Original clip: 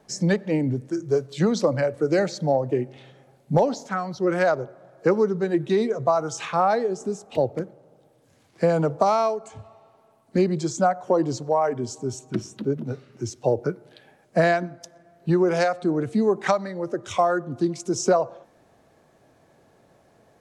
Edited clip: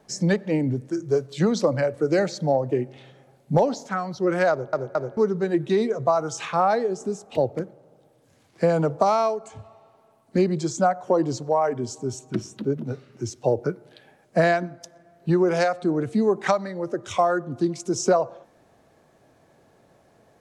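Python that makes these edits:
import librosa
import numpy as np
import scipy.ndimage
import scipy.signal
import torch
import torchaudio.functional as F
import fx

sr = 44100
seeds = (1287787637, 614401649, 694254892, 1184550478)

y = fx.edit(x, sr, fx.stutter_over(start_s=4.51, slice_s=0.22, count=3), tone=tone)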